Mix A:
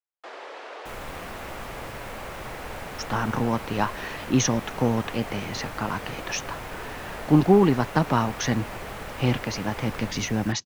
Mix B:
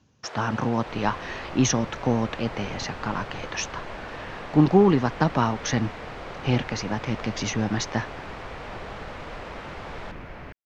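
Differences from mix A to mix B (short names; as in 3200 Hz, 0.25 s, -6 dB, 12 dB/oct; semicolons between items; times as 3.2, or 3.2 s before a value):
speech: entry -2.75 s; second sound: add air absorption 260 m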